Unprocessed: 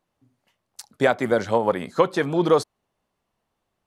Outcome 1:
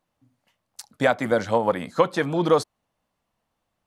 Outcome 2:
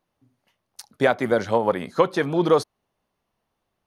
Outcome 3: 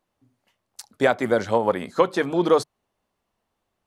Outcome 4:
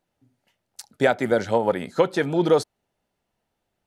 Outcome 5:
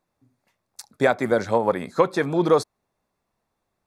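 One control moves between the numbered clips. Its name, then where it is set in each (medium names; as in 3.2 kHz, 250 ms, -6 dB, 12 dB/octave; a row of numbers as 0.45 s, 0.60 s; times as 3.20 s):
band-stop, frequency: 390 Hz, 7.6 kHz, 150 Hz, 1.1 kHz, 3 kHz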